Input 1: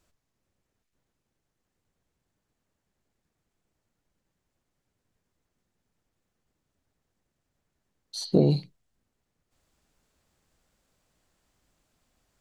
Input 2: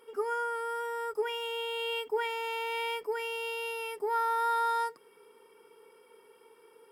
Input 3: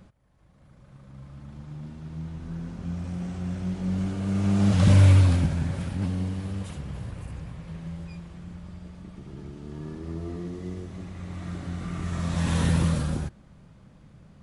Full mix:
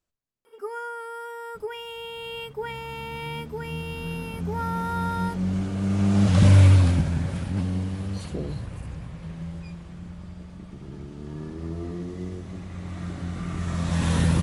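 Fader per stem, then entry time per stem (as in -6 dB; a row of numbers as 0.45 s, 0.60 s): -13.0 dB, -1.5 dB, +1.5 dB; 0.00 s, 0.45 s, 1.55 s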